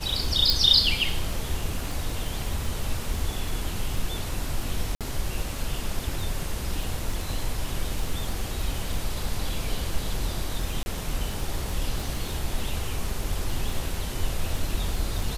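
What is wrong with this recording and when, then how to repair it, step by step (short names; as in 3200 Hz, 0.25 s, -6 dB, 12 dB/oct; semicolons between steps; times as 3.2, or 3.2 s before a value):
crackle 22/s -29 dBFS
0.5 pop
4.95–5.01 gap 57 ms
10.83–10.86 gap 30 ms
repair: de-click; interpolate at 4.95, 57 ms; interpolate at 10.83, 30 ms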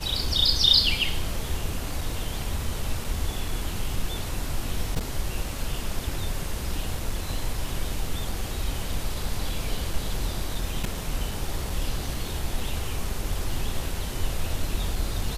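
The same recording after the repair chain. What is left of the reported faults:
none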